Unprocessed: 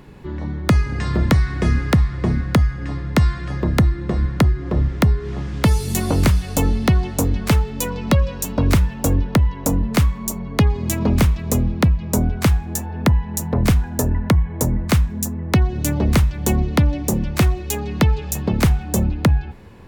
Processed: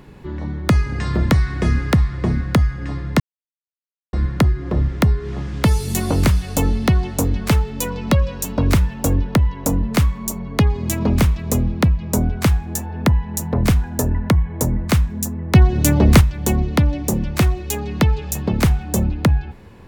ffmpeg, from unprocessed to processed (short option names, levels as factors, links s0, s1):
-filter_complex "[0:a]asplit=5[s0][s1][s2][s3][s4];[s0]atrim=end=3.2,asetpts=PTS-STARTPTS,afade=t=out:st=3.196:d=0.004:c=hsin[s5];[s1]atrim=start=3.2:end=4.13,asetpts=PTS-STARTPTS,volume=0[s6];[s2]atrim=start=4.13:end=15.552,asetpts=PTS-STARTPTS,afade=t=in:d=0.004:c=hsin[s7];[s3]atrim=start=15.548:end=16.212,asetpts=PTS-STARTPTS,volume=1.88[s8];[s4]atrim=start=16.208[s9];[s5][s6][s7]concat=n=3:v=0:a=1[s10];[s10][s8]acrossfade=d=0.004:c1=hsin:c2=hsin[s11];[s11][s9]acrossfade=d=0.004:c1=hsin:c2=hsin"